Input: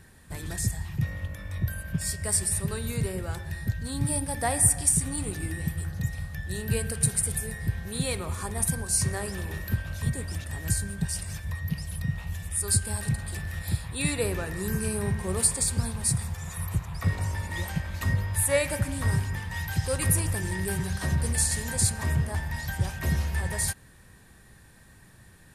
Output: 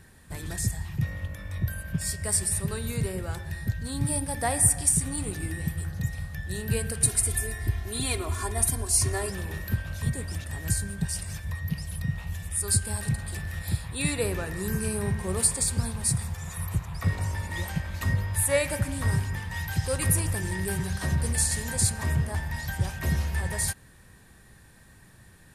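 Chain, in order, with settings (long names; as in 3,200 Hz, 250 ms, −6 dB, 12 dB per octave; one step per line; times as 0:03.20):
0:07.03–0:09.30: comb filter 2.9 ms, depth 87%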